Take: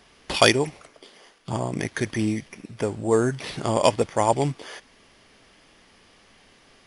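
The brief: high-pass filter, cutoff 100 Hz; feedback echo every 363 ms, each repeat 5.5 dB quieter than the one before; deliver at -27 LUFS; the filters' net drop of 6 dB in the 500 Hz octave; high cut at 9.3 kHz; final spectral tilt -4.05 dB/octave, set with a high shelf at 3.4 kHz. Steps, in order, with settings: high-pass 100 Hz; low-pass 9.3 kHz; peaking EQ 500 Hz -7.5 dB; treble shelf 3.4 kHz -7 dB; feedback delay 363 ms, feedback 53%, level -5.5 dB; trim +0.5 dB

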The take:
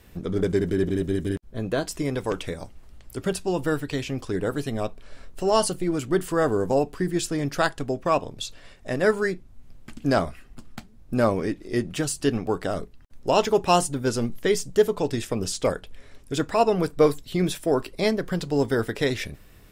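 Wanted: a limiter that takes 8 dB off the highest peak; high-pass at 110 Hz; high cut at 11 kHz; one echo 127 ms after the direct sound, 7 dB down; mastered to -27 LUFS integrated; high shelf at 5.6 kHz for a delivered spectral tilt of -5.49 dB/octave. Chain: high-pass 110 Hz; low-pass 11 kHz; treble shelf 5.6 kHz -9 dB; peak limiter -13.5 dBFS; delay 127 ms -7 dB; trim -0.5 dB

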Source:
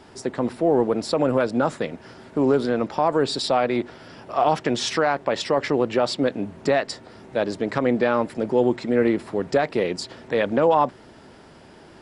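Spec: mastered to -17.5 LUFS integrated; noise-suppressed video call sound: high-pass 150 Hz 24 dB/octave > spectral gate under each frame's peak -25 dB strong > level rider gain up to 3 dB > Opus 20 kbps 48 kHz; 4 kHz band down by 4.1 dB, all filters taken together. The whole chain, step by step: high-pass 150 Hz 24 dB/octave; peaking EQ 4 kHz -5 dB; spectral gate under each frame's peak -25 dB strong; level rider gain up to 3 dB; trim +6 dB; Opus 20 kbps 48 kHz

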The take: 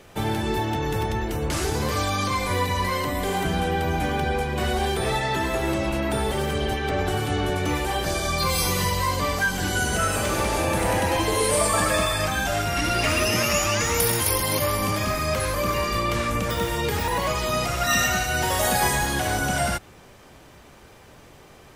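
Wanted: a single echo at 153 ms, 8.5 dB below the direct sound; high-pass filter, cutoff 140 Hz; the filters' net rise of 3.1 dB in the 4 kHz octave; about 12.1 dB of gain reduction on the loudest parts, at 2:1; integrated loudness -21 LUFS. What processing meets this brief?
high-pass 140 Hz; peaking EQ 4 kHz +4 dB; compression 2:1, threshold -40 dBFS; delay 153 ms -8.5 dB; trim +12 dB

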